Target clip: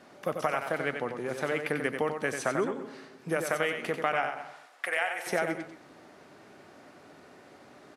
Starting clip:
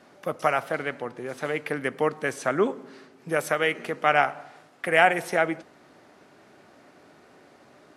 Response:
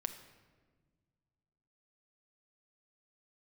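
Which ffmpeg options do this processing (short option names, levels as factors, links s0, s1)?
-filter_complex "[0:a]acompressor=threshold=0.0562:ratio=6,asettb=1/sr,asplit=3[s0][s1][s2];[s0]atrim=end=4.444[s3];[s1]atrim=start=4.44:end=5.27,asetpts=PTS-STARTPTS,afade=t=in:d=0.004:c=qsin,afade=t=out:st=0.826:d=0.004:c=qsin,highpass=740[s4];[s2]atrim=start=5.266[s5];[s3][s4]acrossfade=d=0.004:c1=hsin:c2=qsin[s6];[s6][s5]acrossfade=d=0.004:c1=qsin:c2=hsin,asplit=2[s7][s8];[s8]aecho=0:1:92|220:0.473|0.15[s9];[s7][s9]amix=inputs=2:normalize=0"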